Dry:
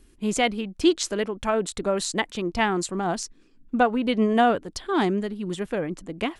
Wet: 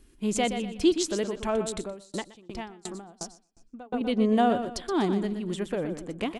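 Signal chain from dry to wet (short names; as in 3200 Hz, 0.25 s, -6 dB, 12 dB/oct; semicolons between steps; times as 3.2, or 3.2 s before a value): dynamic EQ 1700 Hz, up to -7 dB, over -37 dBFS, Q 0.77; feedback echo 0.122 s, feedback 33%, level -9 dB; 1.78–4.01 dB-ramp tremolo decaying 2.8 Hz, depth 30 dB; gain -2 dB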